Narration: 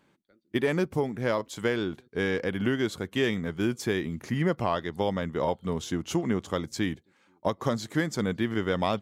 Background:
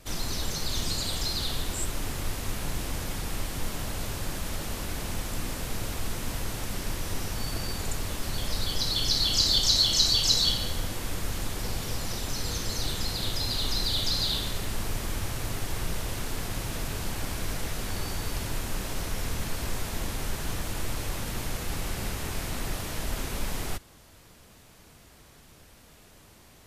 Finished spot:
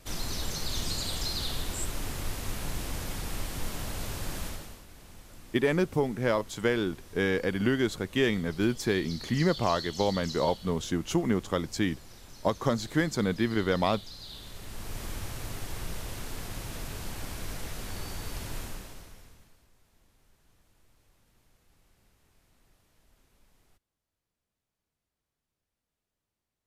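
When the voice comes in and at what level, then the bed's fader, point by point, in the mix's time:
5.00 s, +0.5 dB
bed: 4.45 s -2.5 dB
4.85 s -18 dB
14.19 s -18 dB
15.02 s -5.5 dB
18.63 s -5.5 dB
19.70 s -34 dB

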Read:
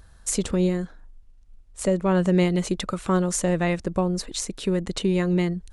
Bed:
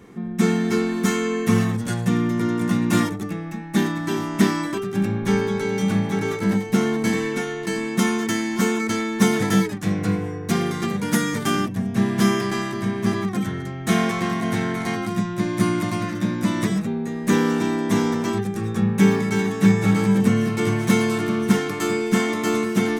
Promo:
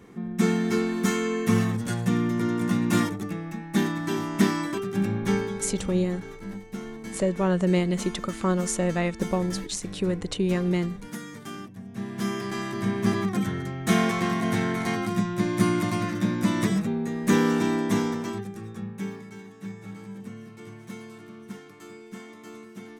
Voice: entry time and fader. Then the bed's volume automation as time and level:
5.35 s, -2.5 dB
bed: 5.29 s -3.5 dB
5.93 s -16.5 dB
11.80 s -16.5 dB
12.89 s -2 dB
17.78 s -2 dB
19.43 s -22 dB

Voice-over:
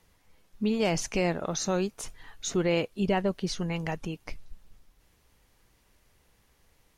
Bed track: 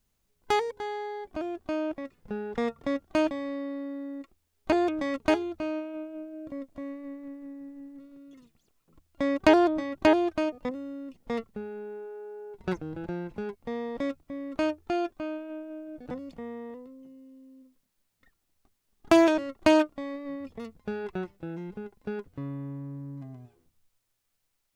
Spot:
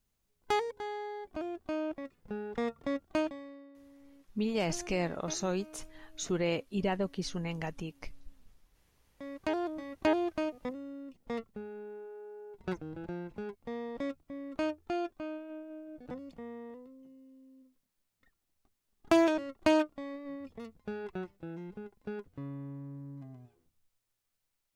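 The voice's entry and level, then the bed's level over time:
3.75 s, -5.0 dB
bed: 3.14 s -4.5 dB
3.73 s -21 dB
8.91 s -21 dB
10.23 s -5.5 dB

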